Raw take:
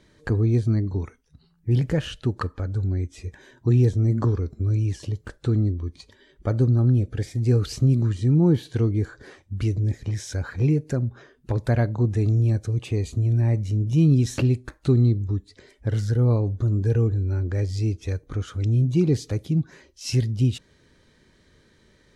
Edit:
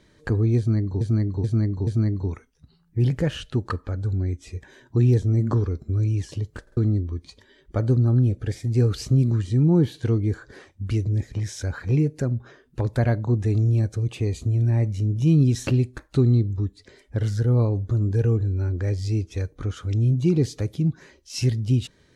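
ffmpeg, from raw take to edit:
-filter_complex "[0:a]asplit=7[s0][s1][s2][s3][s4][s5][s6];[s0]atrim=end=1.012[s7];[s1]atrim=start=0.578:end=1.012[s8];[s2]atrim=start=0.578:end=1.012[s9];[s3]atrim=start=0.578:end=5.382[s10];[s4]atrim=start=5.328:end=5.382[s11];[s5]atrim=start=5.328:end=5.382[s12];[s6]atrim=start=5.478[s13];[s7][s8]acrossfade=d=0.004:c1=hsin:c2=hsin[s14];[s14][s9]acrossfade=d=0.004:c1=hsin:c2=hsin[s15];[s15][s10]acrossfade=d=0.004:c1=hsin:c2=hsin[s16];[s16][s11]acrossfade=d=0.004:c1=hsin:c2=hsin[s17];[s17][s12]acrossfade=d=0.004:c1=hsin:c2=hsin[s18];[s18][s13]acrossfade=d=0.004:c1=hsin:c2=hsin"

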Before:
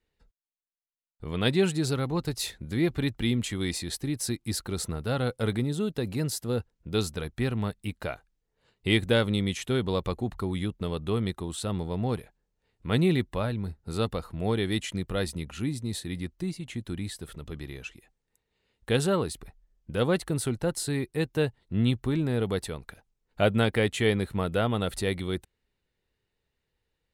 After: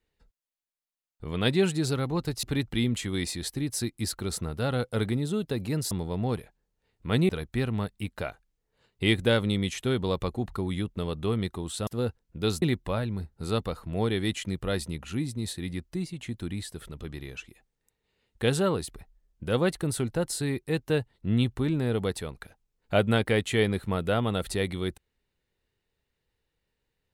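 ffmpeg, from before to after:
-filter_complex "[0:a]asplit=6[s0][s1][s2][s3][s4][s5];[s0]atrim=end=2.432[s6];[s1]atrim=start=2.898:end=6.382[s7];[s2]atrim=start=11.708:end=13.092[s8];[s3]atrim=start=7.128:end=11.712[s9];[s4]atrim=start=6.378:end=7.132[s10];[s5]atrim=start=13.088[s11];[s6][s7]acrossfade=d=0.004:c1=hsin:c2=hsin[s12];[s12][s8]acrossfade=d=0.004:c1=hsin:c2=hsin[s13];[s13][s9]acrossfade=d=0.004:c1=hsin:c2=hsin[s14];[s14][s10]acrossfade=d=0.004:c1=hsin:c2=hsin[s15];[s15][s11]acrossfade=d=0.004:c1=hsin:c2=hsin"

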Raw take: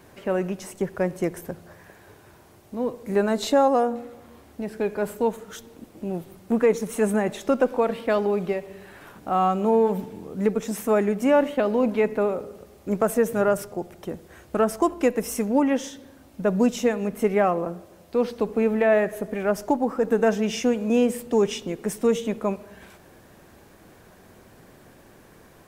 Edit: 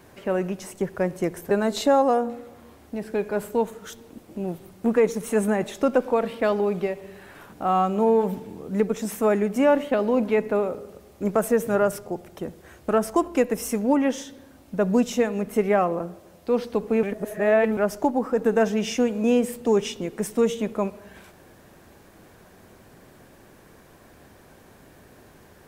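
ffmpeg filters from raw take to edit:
-filter_complex "[0:a]asplit=4[s0][s1][s2][s3];[s0]atrim=end=1.512[s4];[s1]atrim=start=3.168:end=18.692[s5];[s2]atrim=start=18.688:end=19.432,asetpts=PTS-STARTPTS,areverse[s6];[s3]atrim=start=19.428[s7];[s4][s5]acrossfade=d=0.004:c1=hsin:c2=hsin[s8];[s8][s6]acrossfade=d=0.004:c1=hsin:c2=hsin[s9];[s9][s7]acrossfade=d=0.004:c1=hsin:c2=hsin"

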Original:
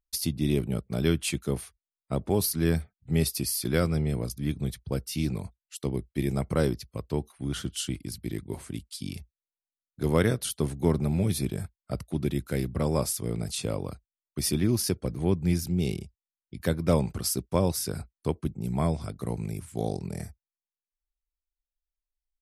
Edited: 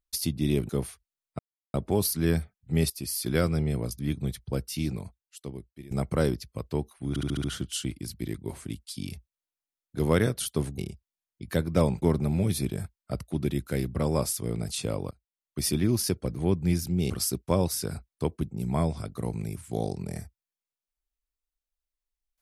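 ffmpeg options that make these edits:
-filter_complex "[0:a]asplit=14[s0][s1][s2][s3][s4][s5][s6][s7][s8][s9][s10][s11][s12][s13];[s0]atrim=end=0.692[s14];[s1]atrim=start=1.428:end=2.13,asetpts=PTS-STARTPTS,afade=t=out:st=0.698:d=0.004:c=hsin,apad=pad_dur=0.35[s15];[s2]atrim=start=2.13:end=3.29,asetpts=PTS-STARTPTS,afade=t=in:d=0.004:c=hsin,afade=t=out:st=1.156:d=0.004:c=hsin:silence=0.199526[s16];[s3]atrim=start=3.29:end=6.3,asetpts=PTS-STARTPTS,afade=t=in:d=0.45:c=qsin:silence=0.199526,afade=t=out:st=1.73:d=1.28:silence=0.0891251[s17];[s4]atrim=start=6.3:end=7.552,asetpts=PTS-STARTPTS,afade=t=in:d=0.004:c=hsin:silence=0.0891251[s18];[s5]atrim=start=7.478:end=7.552[s19];[s6]atrim=start=7.478:end=7.552[s20];[s7]atrim=start=7.478:end=7.552[s21];[s8]atrim=start=7.478:end=7.552[s22];[s9]atrim=start=7.478:end=10.822[s23];[s10]atrim=start=15.898:end=17.142[s24];[s11]atrim=start=10.818:end=13.91,asetpts=PTS-STARTPTS,afade=t=out:st=3.088:d=0.004:c=hsin:silence=0.0707946[s25];[s12]atrim=start=13.91:end=15.902,asetpts=PTS-STARTPTS,afade=t=in:d=0.49:silence=0.0707946[s26];[s13]atrim=start=17.138[s27];[s15][s16][s17][s18]concat=n=4:v=0:a=1[s28];[s14][s28]acrossfade=d=0.004:c1=hsin:c2=hsin[s29];[s29][s19]acrossfade=d=0.004:c1=hsin:c2=hsin[s30];[s30][s20]acrossfade=d=0.004:c1=hsin:c2=hsin[s31];[s31][s21]acrossfade=d=0.004:c1=hsin:c2=hsin[s32];[s32][s22]acrossfade=d=0.004:c1=hsin:c2=hsin[s33];[s33][s23]acrossfade=d=0.004:c1=hsin:c2=hsin[s34];[s34][s24]acrossfade=d=0.004:c1=hsin:c2=hsin[s35];[s25][s26]concat=n=2:v=0:a=1[s36];[s35][s36]acrossfade=d=0.004:c1=hsin:c2=hsin[s37];[s37][s27]acrossfade=d=0.004:c1=hsin:c2=hsin"

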